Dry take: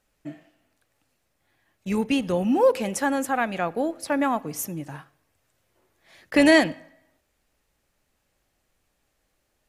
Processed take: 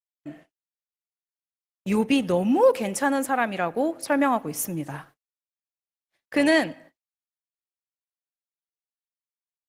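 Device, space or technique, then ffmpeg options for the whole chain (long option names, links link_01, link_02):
video call: -af "highpass=frequency=120:poles=1,dynaudnorm=framelen=130:gausssize=5:maxgain=12.5dB,agate=range=-51dB:threshold=-41dB:ratio=16:detection=peak,volume=-7.5dB" -ar 48000 -c:a libopus -b:a 24k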